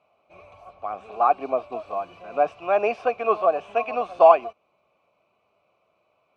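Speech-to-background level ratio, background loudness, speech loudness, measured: 19.0 dB, −41.5 LKFS, −22.5 LKFS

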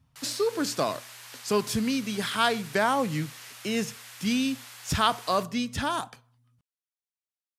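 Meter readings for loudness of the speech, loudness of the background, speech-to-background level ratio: −28.0 LKFS, −44.0 LKFS, 16.0 dB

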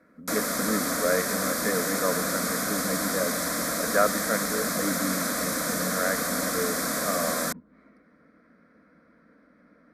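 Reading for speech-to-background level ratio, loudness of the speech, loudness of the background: −4.0 dB, −31.0 LKFS, −27.0 LKFS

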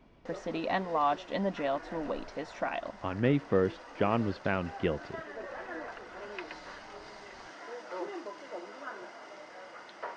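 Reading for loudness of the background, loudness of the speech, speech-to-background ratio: −45.0 LKFS, −32.5 LKFS, 12.5 dB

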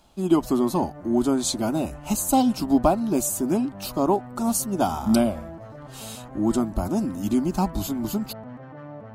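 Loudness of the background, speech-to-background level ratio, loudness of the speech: −41.5 LKFS, 17.5 dB, −24.0 LKFS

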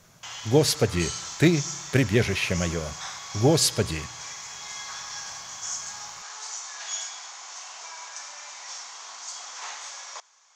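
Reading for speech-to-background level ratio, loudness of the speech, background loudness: 11.5 dB, −24.0 LKFS, −35.5 LKFS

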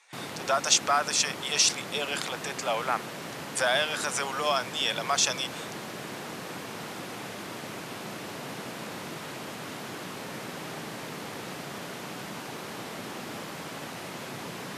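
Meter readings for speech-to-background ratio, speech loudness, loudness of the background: 11.0 dB, −27.0 LKFS, −38.0 LKFS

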